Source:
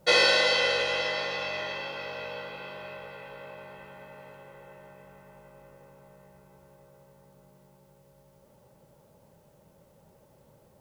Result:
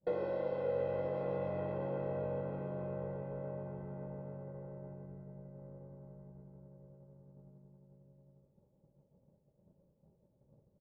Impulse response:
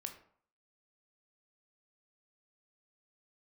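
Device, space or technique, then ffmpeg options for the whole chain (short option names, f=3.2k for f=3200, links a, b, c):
television next door: -filter_complex "[0:a]acompressor=threshold=-31dB:ratio=5,lowpass=410[a];[1:a]atrim=start_sample=2205[b];[a][b]afir=irnorm=-1:irlink=0,agate=range=-33dB:threshold=-53dB:ratio=3:detection=peak,asettb=1/sr,asplit=3[c][d][e];[c]atrim=end=5.064[f];[d]atrim=start=5.06:end=5.59,asetpts=PTS-STARTPTS,afade=t=in:d=0.004:c=qsin,afade=t=out:st=0.526:d=0.004:c=qsin,equalizer=f=1.1k:w=1.5:g=-4[g];[e]atrim=start=5.586[h];[f][g]acrossfade=d=0.004:c1=hsin:c2=qsin[i];[i][h]acrossfade=d=0.004:c1=qsin:c2=hsin,asplit=2[j][k];[k]adelay=583.1,volume=-13dB,highshelf=f=4k:g=-13.1[l];[j][l]amix=inputs=2:normalize=0,volume=10.5dB"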